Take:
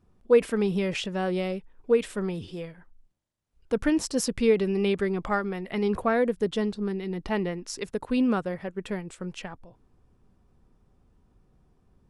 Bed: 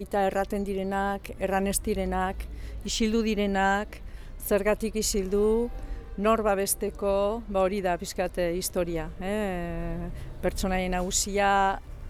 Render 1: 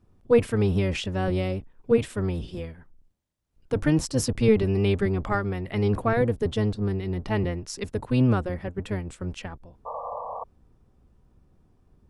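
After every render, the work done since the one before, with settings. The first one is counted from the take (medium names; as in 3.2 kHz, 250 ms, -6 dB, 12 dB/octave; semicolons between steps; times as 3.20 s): octave divider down 1 oct, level +2 dB; 9.85–10.44 s: painted sound noise 450–1200 Hz -34 dBFS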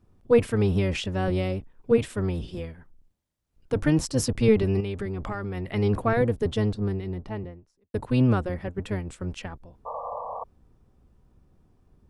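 4.80–5.57 s: compression, threshold -27 dBFS; 6.63–7.94 s: studio fade out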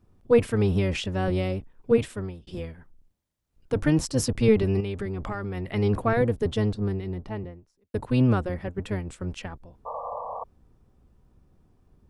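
2.01–2.47 s: fade out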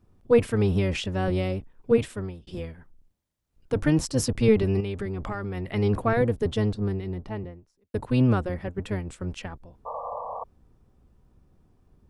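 no audible change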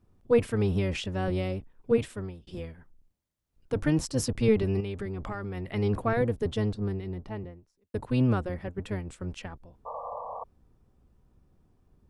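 trim -3.5 dB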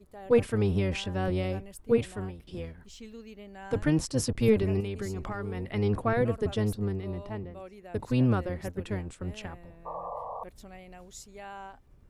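add bed -20.5 dB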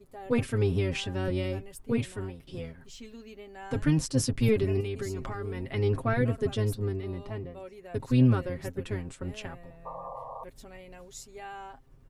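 dynamic bell 750 Hz, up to -5 dB, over -42 dBFS, Q 0.93; comb 7.5 ms, depth 62%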